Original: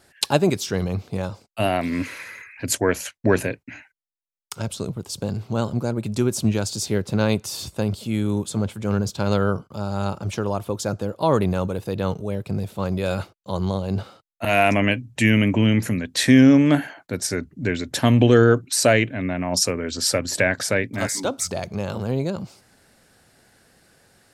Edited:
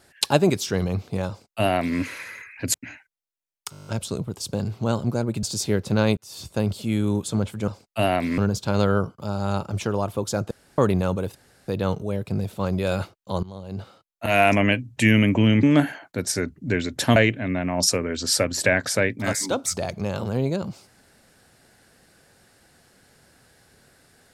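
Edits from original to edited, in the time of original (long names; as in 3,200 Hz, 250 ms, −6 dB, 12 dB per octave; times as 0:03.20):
0:01.29–0:01.99: duplicate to 0:08.90
0:02.74–0:03.59: remove
0:04.56: stutter 0.02 s, 9 plays
0:06.12–0:06.65: remove
0:07.39–0:07.82: fade in
0:11.03–0:11.30: fill with room tone
0:11.87: splice in room tone 0.33 s
0:13.62–0:14.59: fade in linear, from −20 dB
0:15.82–0:16.58: remove
0:18.11–0:18.90: remove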